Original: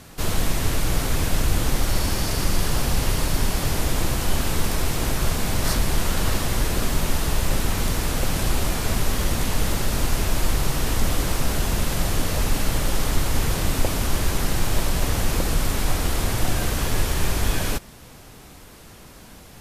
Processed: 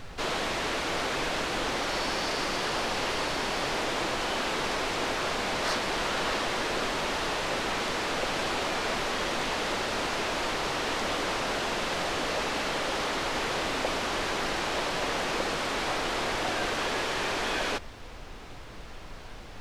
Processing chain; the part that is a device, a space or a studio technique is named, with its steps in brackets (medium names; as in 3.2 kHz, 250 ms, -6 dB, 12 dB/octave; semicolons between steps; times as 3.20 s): aircraft cabin announcement (band-pass 400–4200 Hz; saturation -21 dBFS, distortion -23 dB; brown noise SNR 12 dB); trim +2 dB